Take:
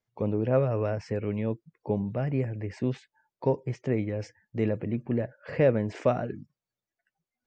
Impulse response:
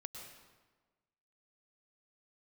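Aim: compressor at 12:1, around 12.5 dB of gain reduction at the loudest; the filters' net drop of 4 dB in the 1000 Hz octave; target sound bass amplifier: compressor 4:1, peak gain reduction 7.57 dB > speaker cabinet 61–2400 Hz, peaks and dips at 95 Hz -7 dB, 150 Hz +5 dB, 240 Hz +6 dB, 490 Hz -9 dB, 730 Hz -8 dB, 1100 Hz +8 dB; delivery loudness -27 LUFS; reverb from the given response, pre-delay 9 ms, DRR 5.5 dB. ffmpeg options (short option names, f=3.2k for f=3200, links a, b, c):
-filter_complex "[0:a]equalizer=f=1k:t=o:g=-5,acompressor=threshold=-31dB:ratio=12,asplit=2[a][b];[1:a]atrim=start_sample=2205,adelay=9[c];[b][c]afir=irnorm=-1:irlink=0,volume=-2dB[d];[a][d]amix=inputs=2:normalize=0,acompressor=threshold=-35dB:ratio=4,highpass=f=61:w=0.5412,highpass=f=61:w=1.3066,equalizer=f=95:t=q:w=4:g=-7,equalizer=f=150:t=q:w=4:g=5,equalizer=f=240:t=q:w=4:g=6,equalizer=f=490:t=q:w=4:g=-9,equalizer=f=730:t=q:w=4:g=-8,equalizer=f=1.1k:t=q:w=4:g=8,lowpass=f=2.4k:w=0.5412,lowpass=f=2.4k:w=1.3066,volume=13dB"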